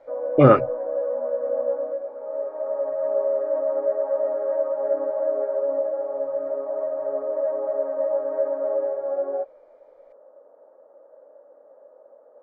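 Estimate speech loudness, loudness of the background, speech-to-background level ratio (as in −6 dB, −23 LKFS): −17.5 LKFS, −26.0 LKFS, 8.5 dB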